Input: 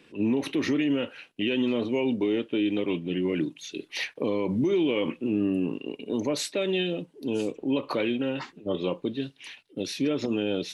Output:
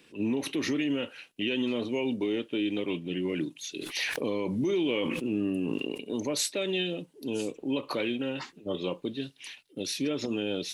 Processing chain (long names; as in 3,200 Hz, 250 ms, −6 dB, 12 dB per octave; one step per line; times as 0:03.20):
high-shelf EQ 4,400 Hz +11 dB
0:03.75–0:06.00: level that may fall only so fast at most 20 dB per second
level −4 dB